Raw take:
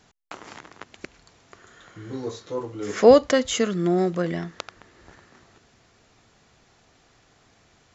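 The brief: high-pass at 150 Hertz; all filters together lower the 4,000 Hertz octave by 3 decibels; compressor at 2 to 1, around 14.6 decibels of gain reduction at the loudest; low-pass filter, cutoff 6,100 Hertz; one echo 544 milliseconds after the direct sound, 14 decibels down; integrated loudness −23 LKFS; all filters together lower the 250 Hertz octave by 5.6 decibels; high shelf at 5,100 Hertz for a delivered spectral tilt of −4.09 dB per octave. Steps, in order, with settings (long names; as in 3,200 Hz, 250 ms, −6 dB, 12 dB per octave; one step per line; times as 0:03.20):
high-pass filter 150 Hz
low-pass filter 6,100 Hz
parametric band 250 Hz −7 dB
parametric band 4,000 Hz −7.5 dB
high-shelf EQ 5,100 Hz +8.5 dB
downward compressor 2 to 1, threshold −37 dBFS
single-tap delay 544 ms −14 dB
level +13.5 dB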